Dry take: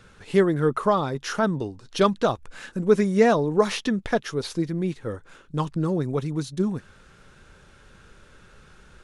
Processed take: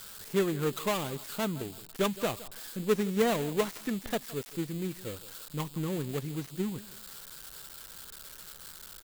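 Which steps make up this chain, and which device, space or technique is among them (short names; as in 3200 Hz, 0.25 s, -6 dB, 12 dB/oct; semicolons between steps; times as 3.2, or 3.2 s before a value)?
low-pass opened by the level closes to 2300 Hz, open at -15.5 dBFS; feedback echo 0.166 s, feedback 30%, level -19 dB; budget class-D amplifier (switching dead time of 0.24 ms; switching spikes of -19 dBFS); gain -8.5 dB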